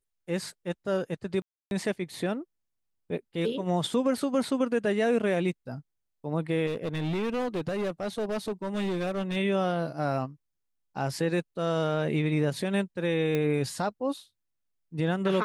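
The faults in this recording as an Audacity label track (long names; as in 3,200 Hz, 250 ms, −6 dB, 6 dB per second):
1.420000	1.710000	drop-out 291 ms
6.660000	9.370000	clipping −26.5 dBFS
13.350000	13.350000	click −16 dBFS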